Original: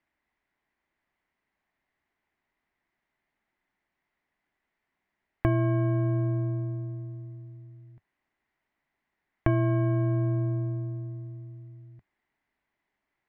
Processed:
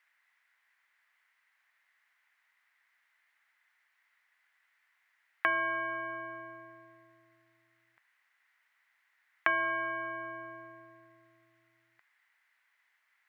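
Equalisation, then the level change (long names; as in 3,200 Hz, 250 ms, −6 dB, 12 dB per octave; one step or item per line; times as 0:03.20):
high-pass with resonance 1,500 Hz, resonance Q 1.6
+7.5 dB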